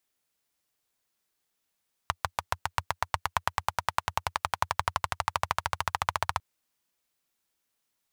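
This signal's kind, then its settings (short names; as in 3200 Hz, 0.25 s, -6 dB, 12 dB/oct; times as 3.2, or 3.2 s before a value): single-cylinder engine model, changing speed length 4.30 s, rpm 800, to 1800, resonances 88/950 Hz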